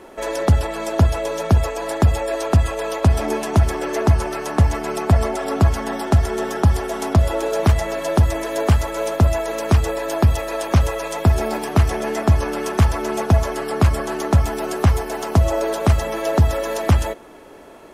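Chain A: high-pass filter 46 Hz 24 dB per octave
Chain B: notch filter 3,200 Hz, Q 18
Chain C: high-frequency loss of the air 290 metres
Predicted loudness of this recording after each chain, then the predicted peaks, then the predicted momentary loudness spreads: −20.0, −19.5, −20.0 LKFS; −3.5, −5.0, −5.0 dBFS; 5, 5, 6 LU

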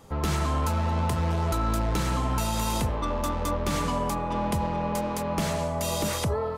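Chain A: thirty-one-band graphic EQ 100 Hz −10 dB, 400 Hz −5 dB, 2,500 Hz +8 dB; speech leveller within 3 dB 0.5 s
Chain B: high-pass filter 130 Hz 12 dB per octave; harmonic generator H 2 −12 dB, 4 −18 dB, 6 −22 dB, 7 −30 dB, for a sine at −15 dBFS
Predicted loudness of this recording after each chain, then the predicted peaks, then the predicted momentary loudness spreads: −28.0, −29.5 LKFS; −15.5, −12.5 dBFS; 1, 2 LU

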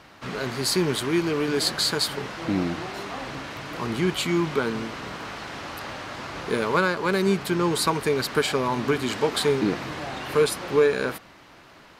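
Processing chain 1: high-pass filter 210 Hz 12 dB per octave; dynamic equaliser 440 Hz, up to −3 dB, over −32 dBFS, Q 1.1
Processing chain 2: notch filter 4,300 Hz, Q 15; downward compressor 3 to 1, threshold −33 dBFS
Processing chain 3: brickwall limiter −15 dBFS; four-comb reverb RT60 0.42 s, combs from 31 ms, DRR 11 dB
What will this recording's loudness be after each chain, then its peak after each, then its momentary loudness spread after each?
−27.0, −34.0, −26.5 LKFS; −8.0, −17.0, −13.0 dBFS; 11, 4, 10 LU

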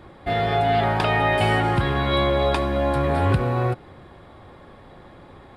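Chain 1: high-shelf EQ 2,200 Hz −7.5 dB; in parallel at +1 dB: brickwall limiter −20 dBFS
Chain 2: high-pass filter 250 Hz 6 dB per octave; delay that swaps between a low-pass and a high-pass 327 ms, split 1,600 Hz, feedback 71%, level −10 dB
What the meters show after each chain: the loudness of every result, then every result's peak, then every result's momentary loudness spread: −18.5, −22.5 LKFS; −6.5, −8.0 dBFS; 4, 17 LU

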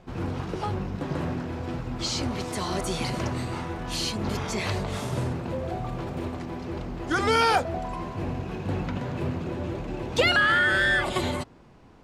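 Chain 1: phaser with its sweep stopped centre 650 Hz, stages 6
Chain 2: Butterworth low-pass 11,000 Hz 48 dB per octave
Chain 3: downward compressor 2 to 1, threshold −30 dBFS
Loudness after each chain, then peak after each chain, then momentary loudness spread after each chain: −31.0, −27.5, −32.0 LKFS; −12.0, −9.5, −15.5 dBFS; 13, 13, 8 LU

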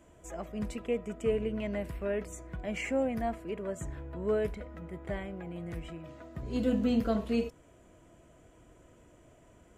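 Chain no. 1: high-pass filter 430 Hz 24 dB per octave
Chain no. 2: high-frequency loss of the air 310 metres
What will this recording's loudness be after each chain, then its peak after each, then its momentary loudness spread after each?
−38.5, −35.0 LKFS; −20.0, −18.0 dBFS; 15, 14 LU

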